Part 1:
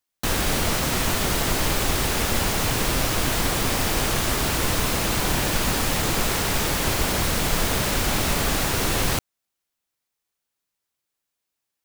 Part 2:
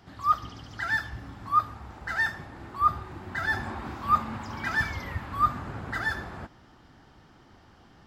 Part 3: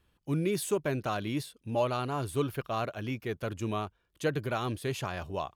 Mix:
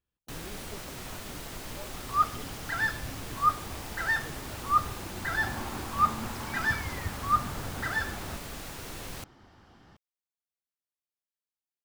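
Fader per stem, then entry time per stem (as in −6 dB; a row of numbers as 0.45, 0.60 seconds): −18.0, −1.5, −19.0 decibels; 0.05, 1.90, 0.00 seconds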